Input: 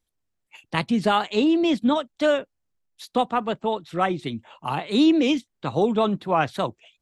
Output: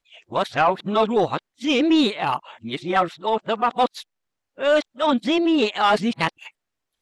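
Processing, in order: whole clip reversed; overdrive pedal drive 12 dB, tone 4000 Hz, clips at -7 dBFS

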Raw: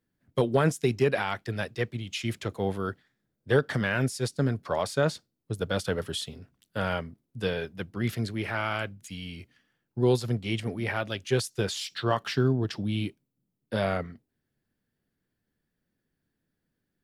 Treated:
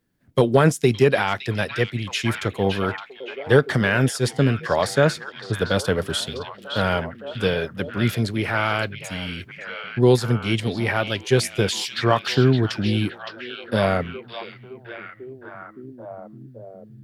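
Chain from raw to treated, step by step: delay with a stepping band-pass 0.565 s, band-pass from 3200 Hz, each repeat -0.7 oct, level -5 dB; gain +7.5 dB

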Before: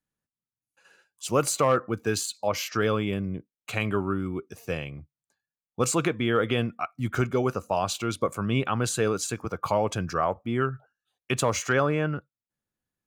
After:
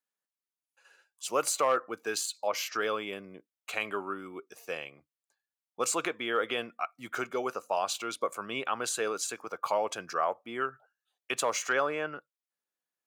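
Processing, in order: HPF 490 Hz 12 dB/oct; gain -2.5 dB

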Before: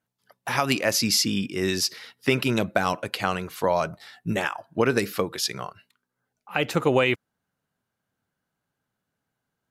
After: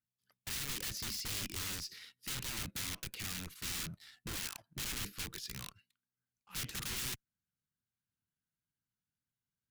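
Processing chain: de-esser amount 90%; sample leveller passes 1; wrapped overs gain 22.5 dB; passive tone stack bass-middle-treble 6-0-2; gain +5 dB

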